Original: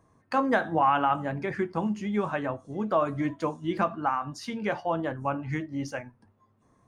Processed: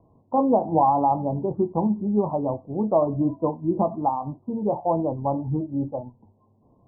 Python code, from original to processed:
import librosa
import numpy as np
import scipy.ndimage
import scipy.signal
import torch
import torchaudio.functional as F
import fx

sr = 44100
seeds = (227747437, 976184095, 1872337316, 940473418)

y = scipy.signal.sosfilt(scipy.signal.butter(12, 980.0, 'lowpass', fs=sr, output='sos'), x)
y = y * librosa.db_to_amplitude(6.0)